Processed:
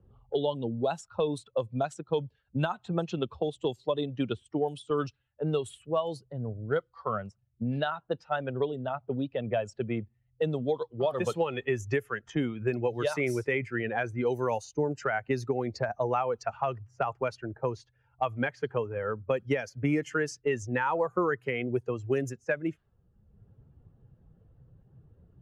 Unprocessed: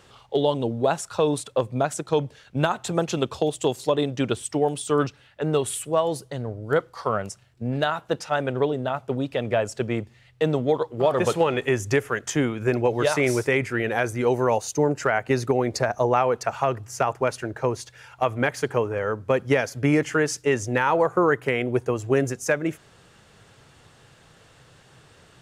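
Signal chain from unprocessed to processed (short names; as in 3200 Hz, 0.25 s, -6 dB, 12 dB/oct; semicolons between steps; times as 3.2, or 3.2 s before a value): per-bin expansion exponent 1.5; low-pass opened by the level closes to 390 Hz, open at -21 dBFS; three-band squash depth 70%; gain -4 dB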